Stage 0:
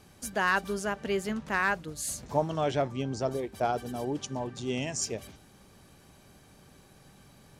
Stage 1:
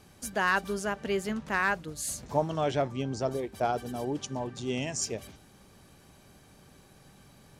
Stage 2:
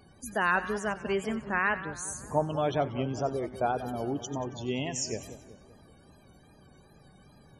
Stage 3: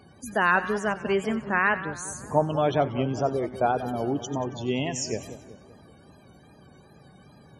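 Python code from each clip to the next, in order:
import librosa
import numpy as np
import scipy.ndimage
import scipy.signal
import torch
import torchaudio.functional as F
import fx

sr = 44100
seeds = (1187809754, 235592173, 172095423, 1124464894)

y1 = x
y2 = fx.spec_topn(y1, sr, count=64)
y2 = fx.echo_split(y2, sr, split_hz=1500.0, low_ms=191, high_ms=94, feedback_pct=52, wet_db=-12.5)
y2 = fx.wow_flutter(y2, sr, seeds[0], rate_hz=2.1, depth_cents=75.0)
y3 = scipy.signal.sosfilt(scipy.signal.butter(2, 76.0, 'highpass', fs=sr, output='sos'), y2)
y3 = fx.high_shelf(y3, sr, hz=6000.0, db=-6.5)
y3 = F.gain(torch.from_numpy(y3), 5.0).numpy()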